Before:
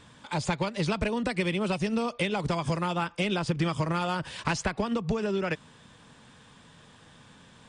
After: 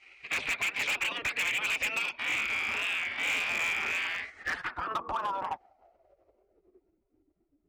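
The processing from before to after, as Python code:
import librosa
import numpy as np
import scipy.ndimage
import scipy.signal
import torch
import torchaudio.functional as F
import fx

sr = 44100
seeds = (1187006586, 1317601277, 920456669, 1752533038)

y = fx.spec_blur(x, sr, span_ms=184.0, at=(2.18, 4.39), fade=0.02)
y = fx.highpass(y, sr, hz=56.0, slope=6)
y = fx.bass_treble(y, sr, bass_db=-6, treble_db=7)
y = fx.spec_gate(y, sr, threshold_db=-15, keep='weak')
y = fx.filter_sweep_lowpass(y, sr, from_hz=2400.0, to_hz=280.0, start_s=3.98, end_s=7.25, q=6.1)
y = np.clip(y, -10.0 ** (-31.0 / 20.0), 10.0 ** (-31.0 / 20.0))
y = fx.record_warp(y, sr, rpm=33.33, depth_cents=100.0)
y = y * librosa.db_to_amplitude(5.0)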